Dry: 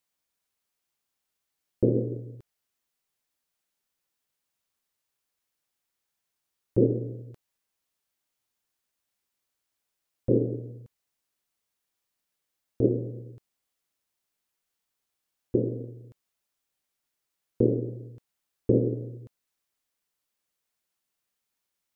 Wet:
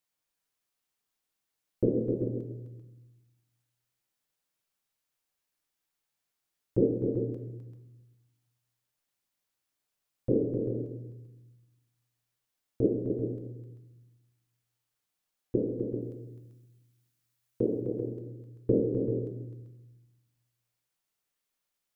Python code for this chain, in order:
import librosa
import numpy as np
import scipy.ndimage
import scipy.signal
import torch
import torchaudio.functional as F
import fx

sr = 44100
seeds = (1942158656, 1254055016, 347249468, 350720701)

y = fx.tilt_eq(x, sr, slope=1.5, at=(16.01, 17.81))
y = fx.echo_multitap(y, sr, ms=(257, 390), db=(-6.5, -9.0))
y = fx.room_shoebox(y, sr, seeds[0], volume_m3=320.0, walls='mixed', distance_m=0.5)
y = y * 10.0 ** (-3.5 / 20.0)